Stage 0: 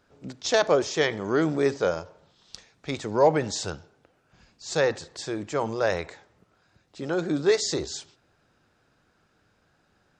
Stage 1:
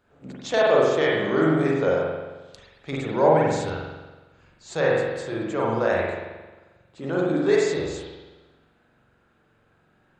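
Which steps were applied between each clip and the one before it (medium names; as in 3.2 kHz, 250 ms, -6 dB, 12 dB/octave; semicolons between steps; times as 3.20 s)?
peaking EQ 5.4 kHz -10.5 dB 0.52 oct; spring tank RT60 1.2 s, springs 44 ms, chirp 70 ms, DRR -4.5 dB; trim -2.5 dB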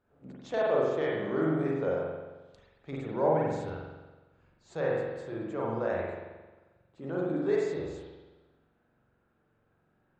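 treble shelf 2.1 kHz -11.5 dB; trim -7.5 dB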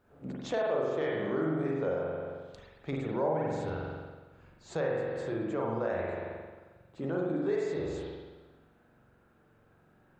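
compression 2.5:1, threshold -40 dBFS, peak gain reduction 12.5 dB; trim +7.5 dB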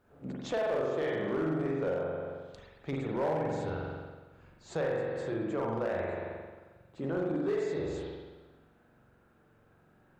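overload inside the chain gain 25.5 dB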